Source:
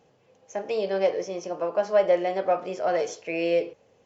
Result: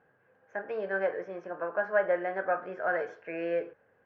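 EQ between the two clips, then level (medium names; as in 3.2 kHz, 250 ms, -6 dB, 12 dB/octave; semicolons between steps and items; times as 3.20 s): resonant low-pass 1.6 kHz, resonance Q 9.5; -8.0 dB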